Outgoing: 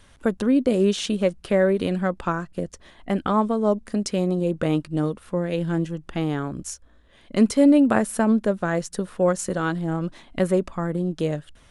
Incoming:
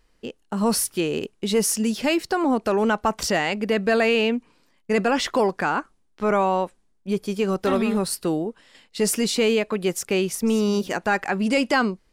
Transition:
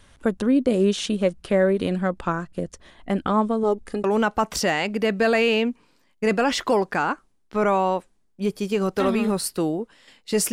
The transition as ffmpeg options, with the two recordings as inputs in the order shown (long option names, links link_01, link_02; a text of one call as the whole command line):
ffmpeg -i cue0.wav -i cue1.wav -filter_complex "[0:a]asettb=1/sr,asplit=3[link_01][link_02][link_03];[link_01]atrim=end=3.634[link_04];[link_02]atrim=start=3.63:end=4.04,asetpts=PTS-STARTPTS,afade=type=in:duration=0.004:curve=qsin,afade=type=out:start_time=0.406:duration=0.004:curve=qsin,aecho=1:1:2.4:0.54,atrim=end_sample=18081[link_05];[link_03]atrim=start=4.036[link_06];[link_04][link_05]acrossfade=duration=0.004:curve1=hsin:curve2=qsin[link_07];[link_07][link_06]acrossfade=duration=0.004:curve1=qsin:curve2=hsin,apad=whole_dur=10.52,atrim=end=10.52,atrim=end=4.042[link_08];[1:a]atrim=start=2.708:end=9.19[link_09];[link_08][link_09]acrossfade=duration=0.004:curve1=hsin:curve2=hsin" out.wav